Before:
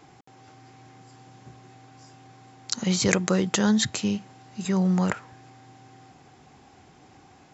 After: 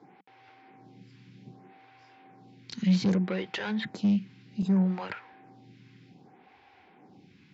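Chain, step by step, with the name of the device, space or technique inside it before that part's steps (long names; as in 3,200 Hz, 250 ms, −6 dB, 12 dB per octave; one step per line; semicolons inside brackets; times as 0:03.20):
vibe pedal into a guitar amplifier (phaser with staggered stages 0.64 Hz; tube saturation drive 25 dB, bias 0.2; loudspeaker in its box 110–4,400 Hz, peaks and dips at 190 Hz +9 dB, 640 Hz −5 dB, 1,200 Hz −6 dB, 2,300 Hz +5 dB)
0:04.62–0:05.14: noise gate with hold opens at −27 dBFS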